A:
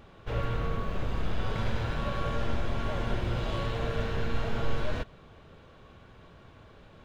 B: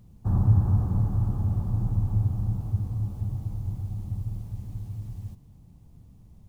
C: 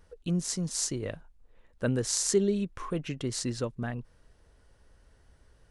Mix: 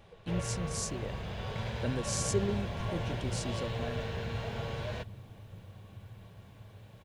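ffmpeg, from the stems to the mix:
-filter_complex "[0:a]highpass=75,equalizer=f=290:w=2.8:g=-13,volume=-2dB[a];[1:a]highpass=f=230:p=1,adelay=1850,volume=-10dB[b];[2:a]volume=-6.5dB[c];[a][b][c]amix=inputs=3:normalize=0,equalizer=f=1.3k:w=2.9:g=-8"

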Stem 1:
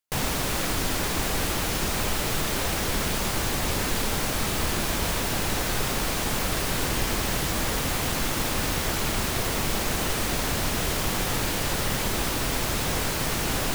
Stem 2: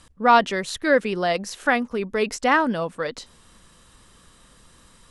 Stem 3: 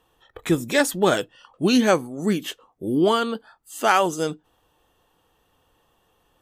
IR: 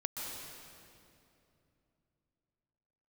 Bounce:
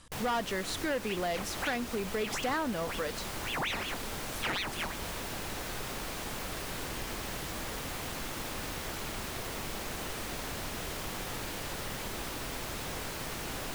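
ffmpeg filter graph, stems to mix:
-filter_complex "[0:a]bass=f=250:g=-3,treble=f=4k:g=-2,volume=-10dB[a];[1:a]asoftclip=type=tanh:threshold=-16dB,volume=-3.5dB,asplit=2[b][c];[2:a]aeval=exprs='val(0)*sin(2*PI*1800*n/s+1800*0.75/5.5*sin(2*PI*5.5*n/s))':c=same,adelay=600,volume=-6.5dB[d];[c]apad=whole_len=309522[e];[d][e]sidechaincompress=threshold=-33dB:ratio=8:attack=16:release=1310[f];[a][b][f]amix=inputs=3:normalize=0,acompressor=threshold=-32dB:ratio=2.5"

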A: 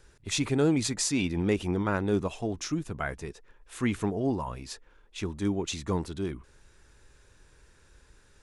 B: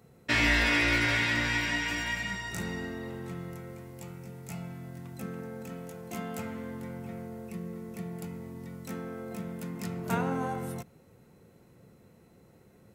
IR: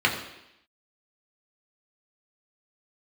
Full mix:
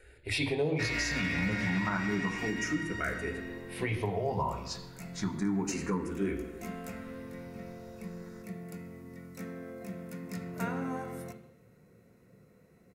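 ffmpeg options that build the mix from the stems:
-filter_complex "[0:a]bandreject=f=122.4:t=h:w=4,bandreject=f=244.8:t=h:w=4,bandreject=f=367.2:t=h:w=4,bandreject=f=489.6:t=h:w=4,bandreject=f=612:t=h:w=4,bandreject=f=734.4:t=h:w=4,bandreject=f=856.8:t=h:w=4,bandreject=f=979.2:t=h:w=4,bandreject=f=1.1016k:t=h:w=4,bandreject=f=1.224k:t=h:w=4,bandreject=f=1.3464k:t=h:w=4,bandreject=f=1.4688k:t=h:w=4,bandreject=f=1.5912k:t=h:w=4,bandreject=f=1.7136k:t=h:w=4,bandreject=f=1.836k:t=h:w=4,bandreject=f=1.9584k:t=h:w=4,bandreject=f=2.0808k:t=h:w=4,bandreject=f=2.2032k:t=h:w=4,bandreject=f=2.3256k:t=h:w=4,bandreject=f=2.448k:t=h:w=4,bandreject=f=2.5704k:t=h:w=4,bandreject=f=2.6928k:t=h:w=4,bandreject=f=2.8152k:t=h:w=4,bandreject=f=2.9376k:t=h:w=4,bandreject=f=3.06k:t=h:w=4,bandreject=f=3.1824k:t=h:w=4,bandreject=f=3.3048k:t=h:w=4,bandreject=f=3.4272k:t=h:w=4,asplit=2[a][b];[b]afreqshift=0.3[c];[a][c]amix=inputs=2:normalize=1,volume=2.5dB,asplit=2[d][e];[e]volume=-13dB[f];[1:a]equalizer=f=850:w=5.1:g=-10.5,asoftclip=type=hard:threshold=-17dB,adelay=500,volume=-4.5dB,asplit=2[g][h];[h]volume=-17.5dB[i];[2:a]atrim=start_sample=2205[j];[f][i]amix=inputs=2:normalize=0[k];[k][j]afir=irnorm=-1:irlink=0[l];[d][g][l]amix=inputs=3:normalize=0,alimiter=limit=-21.5dB:level=0:latency=1:release=422"

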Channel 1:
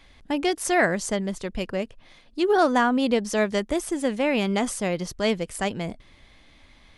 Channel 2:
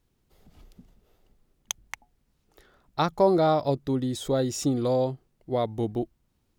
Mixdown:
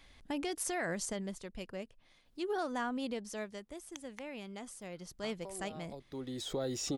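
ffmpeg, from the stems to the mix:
-filter_complex "[0:a]highshelf=f=5.7k:g=6,volume=1dB,afade=t=out:st=0.8:d=0.66:silence=0.398107,afade=t=out:st=3.11:d=0.49:silence=0.446684,afade=t=in:st=4.8:d=0.6:silence=0.398107,asplit=2[a][b];[1:a]acrossover=split=360|6700[c][d][e];[c]acompressor=threshold=-39dB:ratio=4[f];[d]acompressor=threshold=-30dB:ratio=4[g];[e]acompressor=threshold=-52dB:ratio=4[h];[f][g][h]amix=inputs=3:normalize=0,adelay=2250,volume=-1.5dB[i];[b]apad=whole_len=389625[j];[i][j]sidechaincompress=threshold=-58dB:ratio=4:attack=36:release=501[k];[a][k]amix=inputs=2:normalize=0,alimiter=level_in=2.5dB:limit=-24dB:level=0:latency=1:release=71,volume=-2.5dB"

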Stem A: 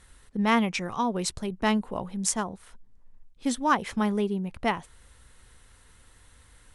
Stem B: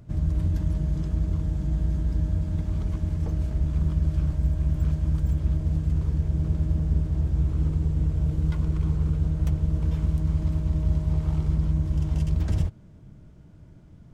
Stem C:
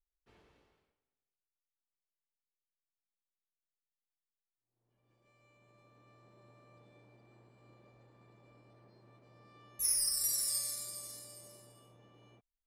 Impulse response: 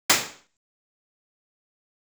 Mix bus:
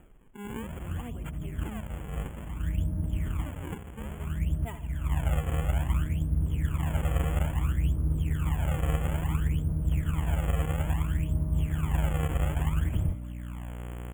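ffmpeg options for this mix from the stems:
-filter_complex "[0:a]asplit=2[a][b];[b]adelay=2.6,afreqshift=-1.5[c];[a][c]amix=inputs=2:normalize=1,volume=-13.5dB,asplit=3[d][e][f];[e]volume=-12dB[g];[1:a]lowpass=1.6k,aeval=exprs='val(0)+0.0251*(sin(2*PI*60*n/s)+sin(2*PI*2*60*n/s)/2+sin(2*PI*3*60*n/s)/3+sin(2*PI*4*60*n/s)/4+sin(2*PI*5*60*n/s)/5)':c=same,adelay=450,volume=-4dB[h];[2:a]asplit=2[i][j];[j]afreqshift=0.38[k];[i][k]amix=inputs=2:normalize=1,adelay=2050,volume=-14.5dB,asplit=2[l][m];[m]volume=-10.5dB[n];[f]apad=whole_len=643313[o];[h][o]sidechaincompress=threshold=-47dB:ratio=8:attack=5.1:release=484[p];[3:a]atrim=start_sample=2205[q];[n][q]afir=irnorm=-1:irlink=0[r];[g]aecho=0:1:79|158|237|316|395|474|553|632|711:1|0.58|0.336|0.195|0.113|0.0656|0.0381|0.0221|0.0128[s];[d][p][l][r][s]amix=inputs=5:normalize=0,acompressor=mode=upward:threshold=-43dB:ratio=2.5,acrusher=samples=40:mix=1:aa=0.000001:lfo=1:lforange=64:lforate=0.59,asuperstop=centerf=4800:order=20:qfactor=1.4"

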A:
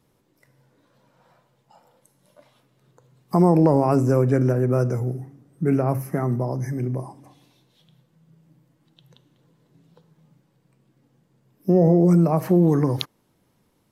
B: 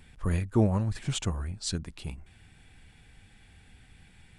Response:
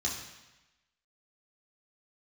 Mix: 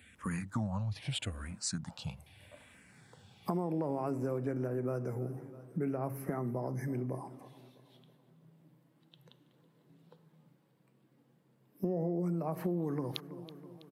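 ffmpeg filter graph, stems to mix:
-filter_complex "[0:a]highpass=150,equalizer=f=6.3k:w=1.6:g=-7,adelay=150,volume=-4dB,asplit=2[a][b];[b]volume=-22.5dB[c];[1:a]highpass=f=96:w=0.5412,highpass=f=96:w=1.3066,equalizer=f=380:w=2.6:g=-12.5,asplit=2[d][e];[e]afreqshift=-0.79[f];[d][f]amix=inputs=2:normalize=1,volume=2.5dB[g];[c]aecho=0:1:326|652|978|1304|1630|1956|2282|2608:1|0.52|0.27|0.141|0.0731|0.038|0.0198|0.0103[h];[a][g][h]amix=inputs=3:normalize=0,acompressor=threshold=-33dB:ratio=4"

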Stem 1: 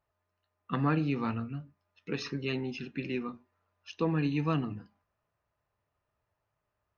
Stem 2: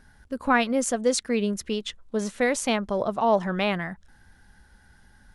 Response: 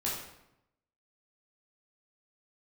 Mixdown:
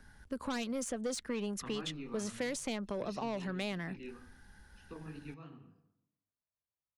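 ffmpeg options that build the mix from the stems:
-filter_complex "[0:a]flanger=delay=20:depth=7:speed=3,adelay=900,volume=-10.5dB,asplit=2[a][b];[b]volume=-19dB[c];[1:a]equalizer=f=700:t=o:w=0.45:g=-3,asoftclip=type=tanh:threshold=-20dB,volume=-2.5dB,asplit=2[d][e];[e]apad=whole_len=351834[f];[a][f]sidechaingate=range=-13dB:threshold=-55dB:ratio=16:detection=peak[g];[2:a]atrim=start_sample=2205[h];[c][h]afir=irnorm=-1:irlink=0[i];[g][d][i]amix=inputs=3:normalize=0,acrossover=split=150|570|3300[j][k][l][m];[j]acompressor=threshold=-52dB:ratio=4[n];[k]acompressor=threshold=-38dB:ratio=4[o];[l]acompressor=threshold=-44dB:ratio=4[p];[m]acompressor=threshold=-42dB:ratio=4[q];[n][o][p][q]amix=inputs=4:normalize=0"

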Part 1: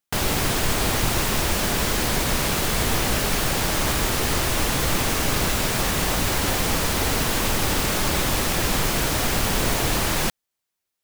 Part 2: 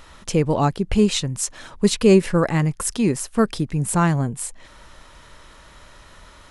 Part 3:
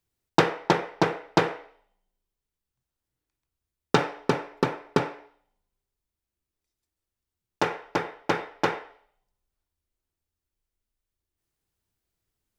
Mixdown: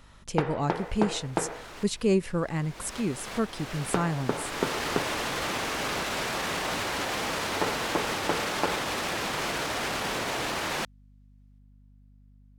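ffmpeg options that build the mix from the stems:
-filter_complex "[0:a]highpass=f=490:p=1,aemphasis=mode=reproduction:type=50fm,alimiter=limit=-20.5dB:level=0:latency=1:release=22,adelay=550,volume=-1dB,afade=t=in:st=2.53:d=0.69:silence=0.237137[a];[1:a]volume=-10dB,asplit=2[b][c];[2:a]lowpass=f=1.9k:p=1,acompressor=threshold=-26dB:ratio=10,volume=2dB[d];[c]apad=whole_len=510841[e];[a][e]sidechaincompress=threshold=-35dB:ratio=16:attack=6.7:release=626[f];[f][b][d]amix=inputs=3:normalize=0,aeval=exprs='val(0)+0.002*(sin(2*PI*50*n/s)+sin(2*PI*2*50*n/s)/2+sin(2*PI*3*50*n/s)/3+sin(2*PI*4*50*n/s)/4+sin(2*PI*5*50*n/s)/5)':c=same"

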